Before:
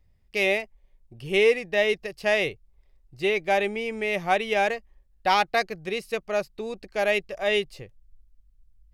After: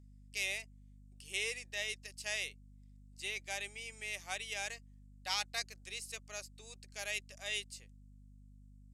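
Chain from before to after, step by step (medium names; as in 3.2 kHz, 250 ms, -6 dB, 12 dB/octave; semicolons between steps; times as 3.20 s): band-pass filter 7.8 kHz, Q 2.7; hum 50 Hz, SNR 14 dB; trim +7 dB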